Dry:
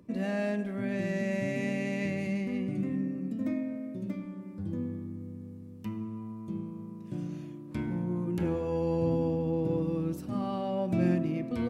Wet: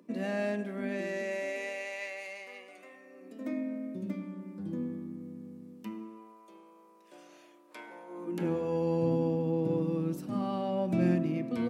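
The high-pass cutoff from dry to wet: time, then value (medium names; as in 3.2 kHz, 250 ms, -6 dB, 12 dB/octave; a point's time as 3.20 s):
high-pass 24 dB/octave
0.85 s 210 Hz
1.96 s 610 Hz
3.03 s 610 Hz
3.82 s 160 Hz
5.66 s 160 Hz
6.46 s 510 Hz
8.08 s 510 Hz
8.54 s 130 Hz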